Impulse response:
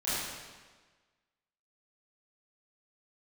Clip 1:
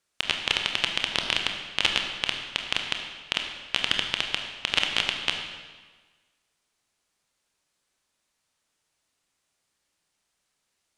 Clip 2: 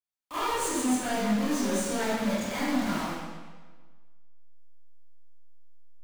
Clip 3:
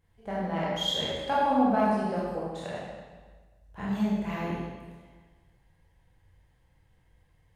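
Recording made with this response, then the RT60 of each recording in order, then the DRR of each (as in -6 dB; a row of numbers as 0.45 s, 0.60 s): 2; 1.4 s, 1.4 s, 1.4 s; 3.0 dB, -13.5 dB, -7.0 dB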